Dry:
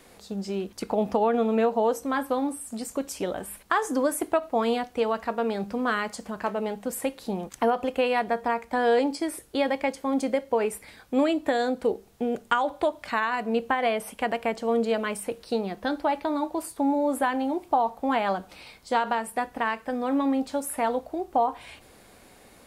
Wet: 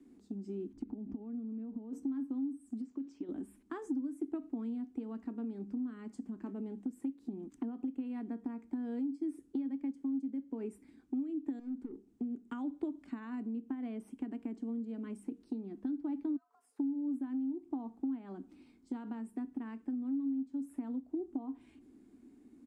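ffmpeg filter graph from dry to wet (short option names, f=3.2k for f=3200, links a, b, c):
-filter_complex "[0:a]asettb=1/sr,asplit=3[a][b][c];[a]atrim=end=0.734[d];[b]atrim=start=0.73:end=1.93,asetpts=PTS-STARTPTS,afade=t=in:d=0.004:c=qsin,afade=t=out:st=1.196:d=0.004:c=qsin,aemphasis=mode=reproduction:type=bsi,acompressor=threshold=-32dB:ratio=16:attack=3.2:release=140:knee=1:detection=peak[e];[c]atrim=start=1.926[f];[d][e]acrossfade=d=0.004:c1=hsin:c2=qsin[g];[g][f]acrossfade=d=0.004:c1=qsin:c2=hsin,asettb=1/sr,asplit=3[h][i][j];[h]atrim=end=2.814[k];[i]atrim=start=2.81:end=3.29,asetpts=PTS-STARTPTS,afade=t=in:d=0.004:c=qsin,afade=t=out:st=0.476:d=0.004:c=qsin,lowpass=f=5.3k:w=0.5412,lowpass=f=5.3k:w=1.3066,lowshelf=f=210:g=-11.5,acompressor=threshold=-34dB:ratio=4:attack=3.2:release=140:knee=1:detection=peak[l];[j]atrim=start=3.286[m];[k][l]acrossfade=d=0.004:c1=hsin:c2=qsin[n];[n][m]acrossfade=d=0.004:c1=qsin:c2=hsin,asettb=1/sr,asplit=3[o][p][q];[o]atrim=end=11.594[r];[p]atrim=start=11.59:end=12.09,asetpts=PTS-STARTPTS,afade=t=in:d=0.004:c=qsin,afade=t=out:st=0.496:d=0.004:c=qsin,acompressor=threshold=-26dB:ratio=6:attack=3.2:release=140:knee=1:detection=peak,aeval=exprs='(tanh(44.7*val(0)+0.55)-tanh(0.55))/44.7':c=same[s];[q]atrim=start=12.086[t];[r][s]acrossfade=d=0.004:c1=hsin:c2=qsin[u];[u][t]acrossfade=d=0.004:c1=qsin:c2=hsin,asettb=1/sr,asplit=3[v][w][x];[v]atrim=end=16.364[y];[w]atrim=start=16.36:end=16.79,asetpts=PTS-STARTPTS,afade=t=in:d=0.004:c=qsin,afade=t=out:st=0.426:d=0.004:c=qsin,acompressor=threshold=-41dB:ratio=10:attack=3.2:release=140:knee=1:detection=peak,afreqshift=400,acrusher=bits=6:mode=log:mix=0:aa=0.000001[z];[x]atrim=start=16.786[aa];[y][z]acrossfade=d=0.004:c1=hsin:c2=qsin[ab];[ab][aa]acrossfade=d=0.004:c1=qsin:c2=hsin,firequalizer=gain_entry='entry(180,0);entry(260,13);entry(520,-28);entry(750,-25);entry(4200,-29);entry(7900,-12)':delay=0.05:min_phase=1,acompressor=threshold=-29dB:ratio=6,acrossover=split=310 5900:gain=0.141 1 0.0708[ac][ad][ae];[ac][ad][ae]amix=inputs=3:normalize=0,volume=1.5dB"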